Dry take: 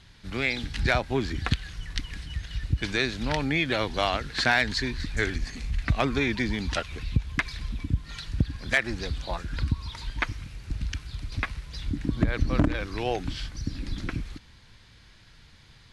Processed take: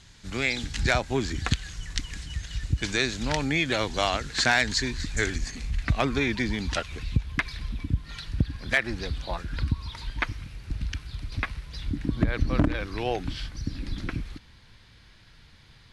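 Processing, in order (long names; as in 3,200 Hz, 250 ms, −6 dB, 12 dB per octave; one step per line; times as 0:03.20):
parametric band 7,100 Hz +11.5 dB 0.64 octaves, from 0:05.51 +3 dB, from 0:07.21 −3.5 dB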